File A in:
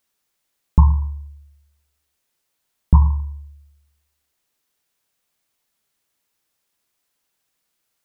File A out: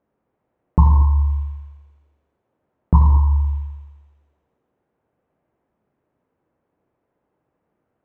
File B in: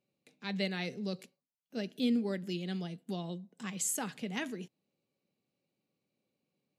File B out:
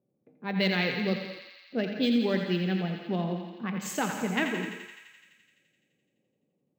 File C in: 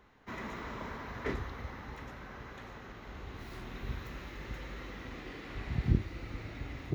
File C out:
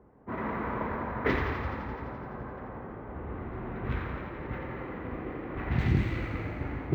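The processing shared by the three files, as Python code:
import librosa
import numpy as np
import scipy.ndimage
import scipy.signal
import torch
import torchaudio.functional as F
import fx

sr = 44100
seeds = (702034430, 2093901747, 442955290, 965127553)

p1 = fx.wiener(x, sr, points=9)
p2 = fx.env_lowpass(p1, sr, base_hz=560.0, full_db=-26.0)
p3 = scipy.signal.sosfilt(scipy.signal.butter(2, 55.0, 'highpass', fs=sr, output='sos'), p2)
p4 = fx.high_shelf(p3, sr, hz=2300.0, db=8.5)
p5 = fx.hum_notches(p4, sr, base_hz=50, count=5)
p6 = fx.over_compress(p5, sr, threshold_db=-33.0, ratio=-1.0)
p7 = p5 + (p6 * librosa.db_to_amplitude(2.0))
p8 = fx.air_absorb(p7, sr, metres=69.0)
p9 = fx.echo_thinned(p8, sr, ms=85, feedback_pct=79, hz=790.0, wet_db=-6.5)
p10 = fx.rev_gated(p9, sr, seeds[0], gate_ms=260, shape='flat', drr_db=7.5)
p11 = np.interp(np.arange(len(p10)), np.arange(len(p10))[::2], p10[::2])
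y = p11 * librosa.db_to_amplitude(1.0)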